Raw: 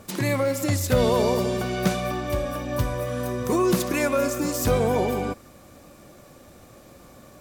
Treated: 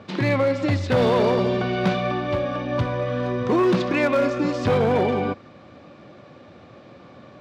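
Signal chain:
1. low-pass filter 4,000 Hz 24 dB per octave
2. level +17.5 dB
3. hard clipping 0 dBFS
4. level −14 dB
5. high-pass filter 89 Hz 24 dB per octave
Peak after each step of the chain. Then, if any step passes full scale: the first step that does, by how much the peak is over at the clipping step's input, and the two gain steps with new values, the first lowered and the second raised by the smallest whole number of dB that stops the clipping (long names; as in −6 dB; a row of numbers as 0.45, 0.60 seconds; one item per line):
−9.5, +8.0, 0.0, −14.0, −7.5 dBFS
step 2, 8.0 dB
step 2 +9.5 dB, step 4 −6 dB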